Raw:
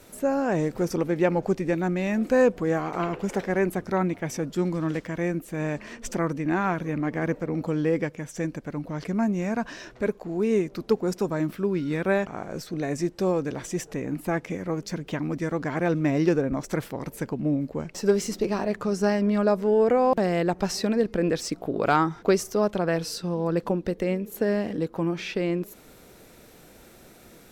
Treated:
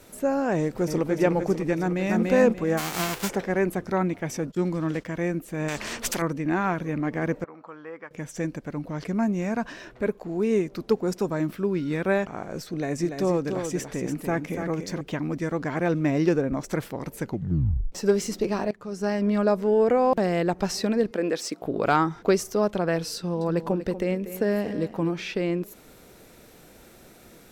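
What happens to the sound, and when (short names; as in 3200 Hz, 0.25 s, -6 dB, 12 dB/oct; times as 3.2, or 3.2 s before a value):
0.57–1.13 echo throw 0.3 s, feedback 70%, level -6.5 dB
1.8–2.24 echo throw 0.29 s, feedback 20%, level -1 dB
2.77–3.28 spectral whitening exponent 0.3
4.47–5.05 gate -40 dBFS, range -19 dB
5.68–6.22 spectral compressor 2:1
7.44–8.11 band-pass 1200 Hz, Q 2.6
9.72–10.18 bell 5800 Hz -6 dB 1 oct
12.71–15.01 echo 0.289 s -6.5 dB
17.23 tape stop 0.69 s
18.71–19.29 fade in, from -19.5 dB
21.11–21.62 HPF 280 Hz
23.17–25.18 echo 0.24 s -12.5 dB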